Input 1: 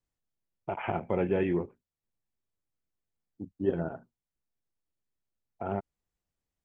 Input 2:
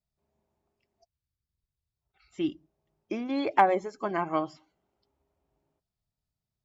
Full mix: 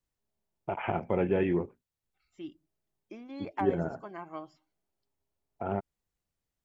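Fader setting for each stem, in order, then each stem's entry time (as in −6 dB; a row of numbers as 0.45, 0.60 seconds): +0.5, −13.0 decibels; 0.00, 0.00 seconds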